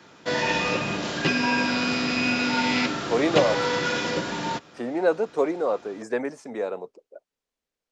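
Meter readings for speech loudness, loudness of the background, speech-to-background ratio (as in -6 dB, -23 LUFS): -26.5 LUFS, -24.5 LUFS, -2.0 dB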